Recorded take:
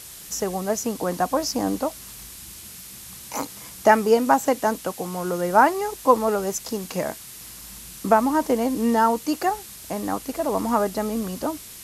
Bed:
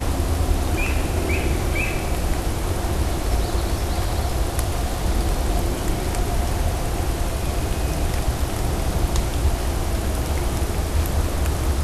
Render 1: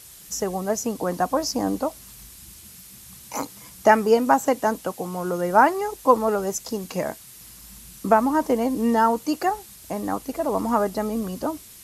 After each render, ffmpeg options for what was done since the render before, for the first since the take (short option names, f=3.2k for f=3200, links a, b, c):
-af "afftdn=nr=6:nf=-41"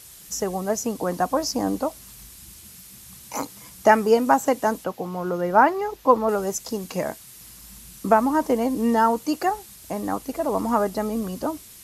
-filter_complex "[0:a]asettb=1/sr,asplit=3[a][b][c];[a]atrim=end=4.844[d];[b]atrim=start=4.84:end=6.29,asetpts=PTS-STARTPTS,afade=t=in:d=0.004:c=qsin,afade=t=out:st=1.446:d=0.004:c=qsin,equalizer=f=9.1k:t=o:w=1.1:g=-13[e];[c]atrim=start=6.286[f];[d][e]acrossfade=d=0.004:c1=hsin:c2=qsin[g];[g][f]acrossfade=d=0.004:c1=qsin:c2=hsin"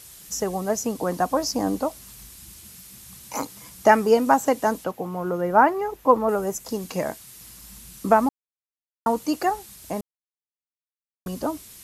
-filter_complex "[0:a]asettb=1/sr,asplit=3[a][b][c];[a]atrim=end=4.914[d];[b]atrim=start=4.91:end=6.69,asetpts=PTS-STARTPTS,afade=t=in:d=0.004:c=qsin,afade=t=out:st=1.776:d=0.004:c=qsin,equalizer=f=4.5k:t=o:w=1.3:g=-7[e];[c]atrim=start=6.686[f];[d][e]acrossfade=d=0.004:c1=hsin:c2=qsin[g];[g][f]acrossfade=d=0.004:c1=qsin:c2=hsin,asplit=5[h][i][j][k][l];[h]atrim=end=8.29,asetpts=PTS-STARTPTS,afade=t=out:st=8.286:d=0.004:c=hsin[m];[i]atrim=start=8.29:end=9.06,asetpts=PTS-STARTPTS,volume=0[n];[j]atrim=start=9.06:end=10.01,asetpts=PTS-STARTPTS,afade=t=in:d=0.004:c=hsin,afade=t=out:st=0.946:d=0.004:c=hsin[o];[k]atrim=start=10.01:end=11.26,asetpts=PTS-STARTPTS,volume=0[p];[l]atrim=start=11.26,asetpts=PTS-STARTPTS,afade=t=in:d=0.004:c=hsin[q];[m][n][o][p][q]concat=n=5:v=0:a=1"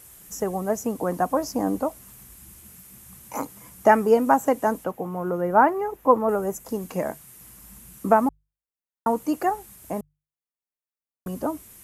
-af "equalizer=f=4.4k:w=0.98:g=-12,bandreject=f=50:t=h:w=6,bandreject=f=100:t=h:w=6,bandreject=f=150:t=h:w=6"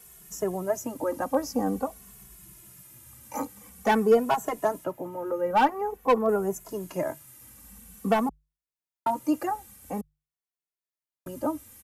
-filter_complex "[0:a]acrossover=split=190|2800[a][b][c];[b]volume=12.5dB,asoftclip=hard,volume=-12.5dB[d];[a][d][c]amix=inputs=3:normalize=0,asplit=2[e][f];[f]adelay=2.3,afreqshift=-0.48[g];[e][g]amix=inputs=2:normalize=1"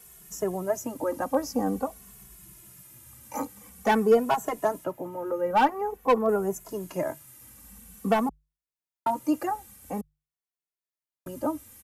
-af anull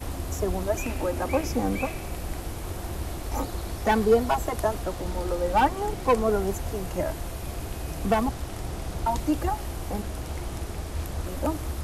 -filter_complex "[1:a]volume=-10.5dB[a];[0:a][a]amix=inputs=2:normalize=0"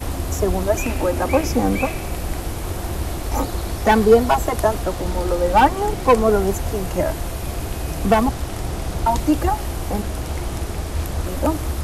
-af "volume=7.5dB"